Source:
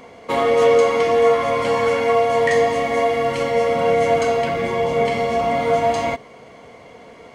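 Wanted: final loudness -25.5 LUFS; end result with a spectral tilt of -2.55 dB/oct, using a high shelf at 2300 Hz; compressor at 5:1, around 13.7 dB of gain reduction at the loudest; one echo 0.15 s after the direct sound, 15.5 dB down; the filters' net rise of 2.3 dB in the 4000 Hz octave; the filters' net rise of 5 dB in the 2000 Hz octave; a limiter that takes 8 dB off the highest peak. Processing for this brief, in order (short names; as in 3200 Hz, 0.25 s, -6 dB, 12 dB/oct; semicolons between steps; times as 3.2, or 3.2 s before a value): bell 2000 Hz +6.5 dB; high shelf 2300 Hz -4 dB; bell 4000 Hz +4 dB; compressor 5:1, threshold -26 dBFS; limiter -22.5 dBFS; echo 0.15 s -15.5 dB; gain +5.5 dB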